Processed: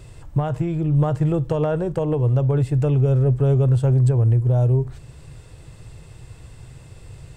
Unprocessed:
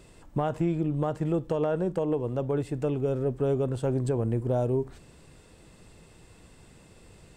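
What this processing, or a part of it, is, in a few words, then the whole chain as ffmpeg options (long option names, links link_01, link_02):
car stereo with a boomy subwoofer: -af "lowshelf=frequency=160:width_type=q:width=3:gain=7,alimiter=limit=-16dB:level=0:latency=1:release=488,volume=5.5dB"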